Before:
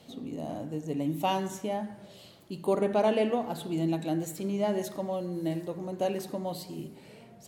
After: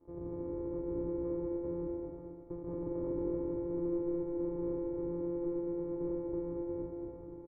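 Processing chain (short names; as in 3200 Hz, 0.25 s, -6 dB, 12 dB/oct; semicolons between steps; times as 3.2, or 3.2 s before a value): sample sorter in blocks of 256 samples; comb 1.7 ms, depth 44%; sample leveller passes 5; vocal tract filter u; fixed phaser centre 760 Hz, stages 6; on a send: bouncing-ball echo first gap 0.23 s, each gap 0.65×, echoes 5; on the sum: gain -2 dB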